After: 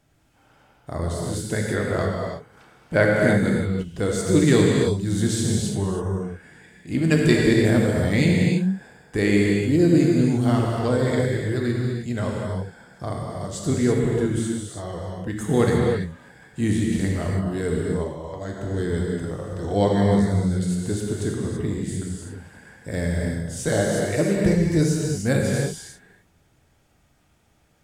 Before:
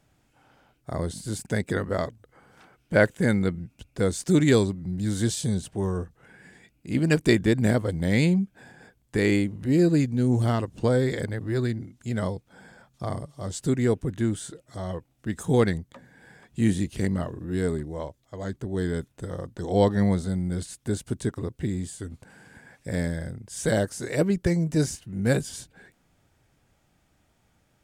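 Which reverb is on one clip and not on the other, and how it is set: gated-style reverb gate 360 ms flat, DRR -2 dB

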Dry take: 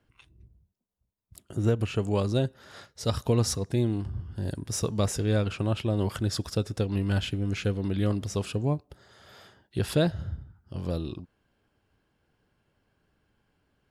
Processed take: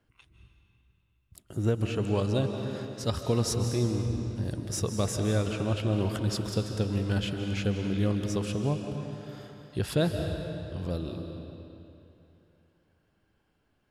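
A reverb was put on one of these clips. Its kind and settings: algorithmic reverb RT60 2.9 s, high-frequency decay 0.85×, pre-delay 115 ms, DRR 4.5 dB; trim -2 dB

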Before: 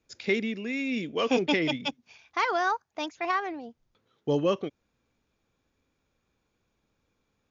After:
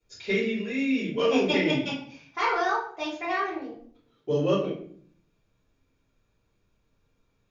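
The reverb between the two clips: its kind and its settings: simulated room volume 67 m³, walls mixed, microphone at 3.3 m; trim -12 dB

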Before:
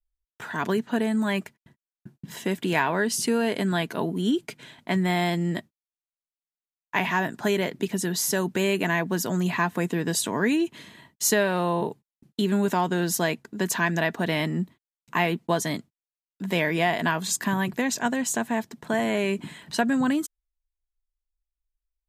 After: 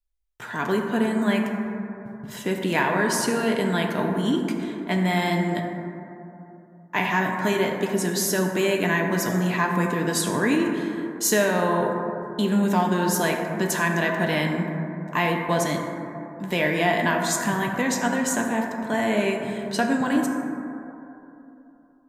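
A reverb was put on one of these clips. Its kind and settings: plate-style reverb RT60 3.1 s, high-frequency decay 0.25×, pre-delay 0 ms, DRR 1 dB

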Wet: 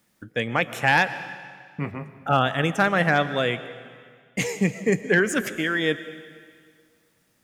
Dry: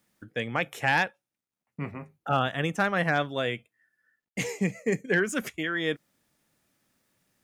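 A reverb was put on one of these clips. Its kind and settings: algorithmic reverb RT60 1.9 s, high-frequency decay 0.95×, pre-delay 80 ms, DRR 13 dB; trim +5 dB

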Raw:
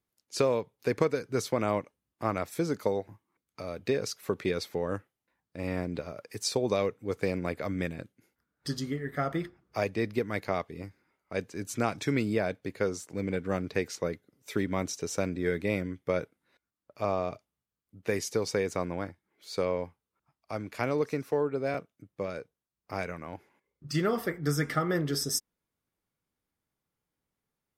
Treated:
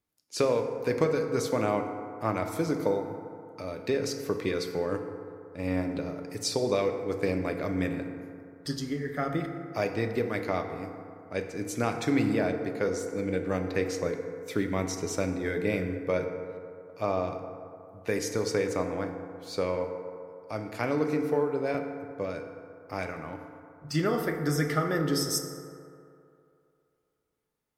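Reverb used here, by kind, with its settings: FDN reverb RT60 2.6 s, low-frequency decay 0.8×, high-frequency decay 0.35×, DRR 4.5 dB

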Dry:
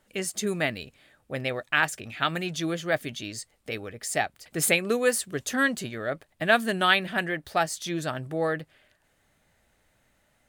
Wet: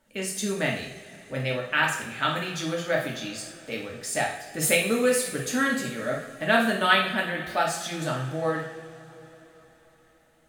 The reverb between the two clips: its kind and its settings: two-slope reverb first 0.6 s, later 4.6 s, from -20 dB, DRR -2.5 dB; trim -3.5 dB

